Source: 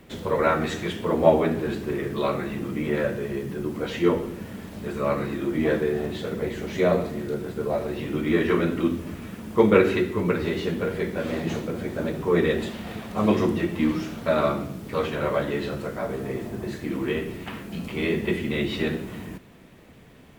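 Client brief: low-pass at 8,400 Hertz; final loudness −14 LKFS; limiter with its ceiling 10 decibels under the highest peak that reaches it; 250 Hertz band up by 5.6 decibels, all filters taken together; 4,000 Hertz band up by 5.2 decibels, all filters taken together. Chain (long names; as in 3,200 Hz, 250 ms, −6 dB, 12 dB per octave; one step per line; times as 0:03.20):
low-pass filter 8,400 Hz
parametric band 250 Hz +7.5 dB
parametric band 4,000 Hz +6.5 dB
level +9.5 dB
brickwall limiter −1.5 dBFS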